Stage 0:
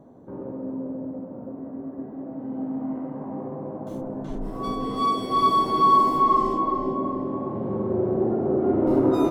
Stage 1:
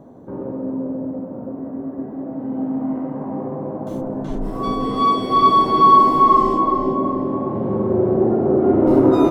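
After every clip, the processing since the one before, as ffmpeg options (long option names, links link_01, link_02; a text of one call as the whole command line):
ffmpeg -i in.wav -filter_complex "[0:a]acrossover=split=4700[link_01][link_02];[link_02]acompressor=threshold=-57dB:ratio=4:attack=1:release=60[link_03];[link_01][link_03]amix=inputs=2:normalize=0,volume=6.5dB" out.wav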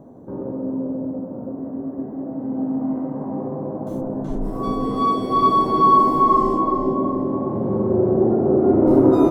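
ffmpeg -i in.wav -af "equalizer=frequency=2800:width=0.61:gain=-8.5" out.wav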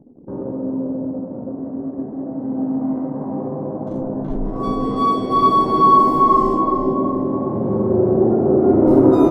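ffmpeg -i in.wav -af "anlmdn=1.58,volume=2dB" out.wav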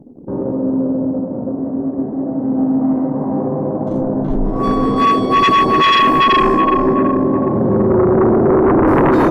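ffmpeg -i in.wav -af "aeval=exprs='0.891*sin(PI/2*3.16*val(0)/0.891)':channel_layout=same,volume=-7dB" out.wav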